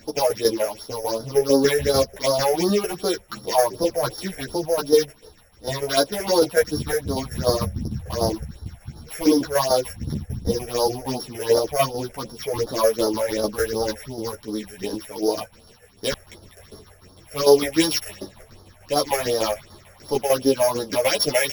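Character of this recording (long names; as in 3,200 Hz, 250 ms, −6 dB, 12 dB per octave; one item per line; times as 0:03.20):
a buzz of ramps at a fixed pitch in blocks of 8 samples
phaser sweep stages 6, 2.7 Hz, lowest notch 260–2,500 Hz
tremolo saw down 6.7 Hz, depth 60%
a shimmering, thickened sound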